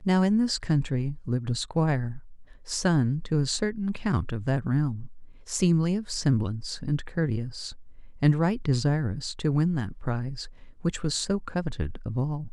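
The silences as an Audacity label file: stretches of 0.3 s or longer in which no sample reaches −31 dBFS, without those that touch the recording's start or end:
2.170000	2.690000	silence
5.050000	5.500000	silence
7.700000	8.220000	silence
10.440000	10.850000	silence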